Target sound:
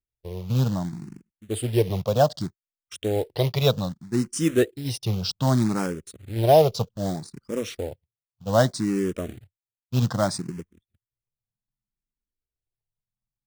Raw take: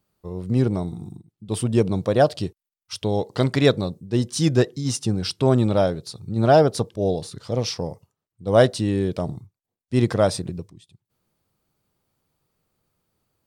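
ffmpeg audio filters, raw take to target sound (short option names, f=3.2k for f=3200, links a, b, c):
-filter_complex "[0:a]anlmdn=2.51,acrusher=bits=4:mode=log:mix=0:aa=0.000001,asplit=2[a][b];[b]afreqshift=0.64[c];[a][c]amix=inputs=2:normalize=1"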